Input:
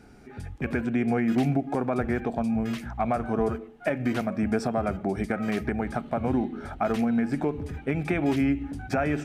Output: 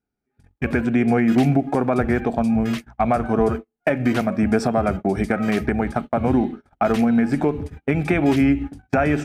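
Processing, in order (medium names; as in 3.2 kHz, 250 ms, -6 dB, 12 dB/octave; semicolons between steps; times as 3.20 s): gate -32 dBFS, range -39 dB; trim +7 dB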